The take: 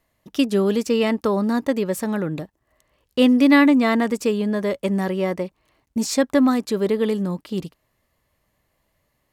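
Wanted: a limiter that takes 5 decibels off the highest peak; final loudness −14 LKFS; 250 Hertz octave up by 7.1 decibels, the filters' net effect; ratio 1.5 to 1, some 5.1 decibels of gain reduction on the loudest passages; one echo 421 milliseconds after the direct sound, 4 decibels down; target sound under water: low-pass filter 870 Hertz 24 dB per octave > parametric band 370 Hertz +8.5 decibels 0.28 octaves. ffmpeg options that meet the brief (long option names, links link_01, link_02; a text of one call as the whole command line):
ffmpeg -i in.wav -af "equalizer=frequency=250:width_type=o:gain=7,acompressor=threshold=-20dB:ratio=1.5,alimiter=limit=-11dB:level=0:latency=1,lowpass=frequency=870:width=0.5412,lowpass=frequency=870:width=1.3066,equalizer=frequency=370:width_type=o:width=0.28:gain=8.5,aecho=1:1:421:0.631,volume=4dB" out.wav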